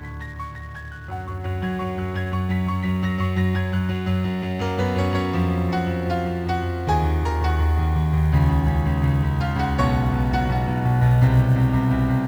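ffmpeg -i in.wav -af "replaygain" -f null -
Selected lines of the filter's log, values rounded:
track_gain = +5.7 dB
track_peak = 0.345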